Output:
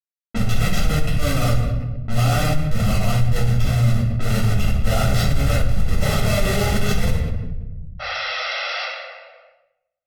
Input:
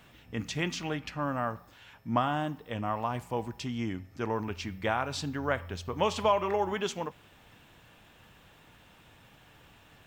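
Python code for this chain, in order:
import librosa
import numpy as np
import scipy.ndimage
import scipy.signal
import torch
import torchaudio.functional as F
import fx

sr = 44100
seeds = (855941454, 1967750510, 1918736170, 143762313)

p1 = fx.peak_eq(x, sr, hz=180.0, db=-9.0, octaves=0.38)
p2 = fx.notch(p1, sr, hz=4400.0, q=18.0)
p3 = p2 + fx.echo_single(p2, sr, ms=184, db=-22.5, dry=0)
p4 = fx.schmitt(p3, sr, flips_db=-33.5)
p5 = fx.spec_paint(p4, sr, seeds[0], shape='noise', start_s=7.99, length_s=0.85, low_hz=480.0, high_hz=5900.0, level_db=-45.0)
p6 = fx.env_lowpass(p5, sr, base_hz=770.0, full_db=-34.0)
p7 = fx.peak_eq(p6, sr, hz=700.0, db=-6.5, octaves=1.5)
p8 = p7 + 0.92 * np.pad(p7, (int(1.5 * sr / 1000.0), 0))[:len(p7)]
p9 = fx.room_shoebox(p8, sr, seeds[1], volume_m3=240.0, walls='mixed', distance_m=2.9)
p10 = fx.env_flatten(p9, sr, amount_pct=50)
y = F.gain(torch.from_numpy(p10), -1.0).numpy()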